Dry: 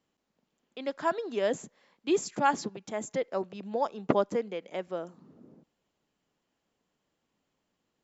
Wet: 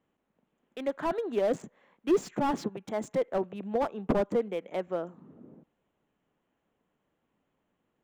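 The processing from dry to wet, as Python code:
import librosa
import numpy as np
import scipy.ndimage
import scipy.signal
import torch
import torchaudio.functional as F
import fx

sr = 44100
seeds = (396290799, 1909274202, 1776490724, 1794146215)

y = fx.wiener(x, sr, points=9)
y = fx.slew_limit(y, sr, full_power_hz=31.0)
y = F.gain(torch.from_numpy(y), 3.0).numpy()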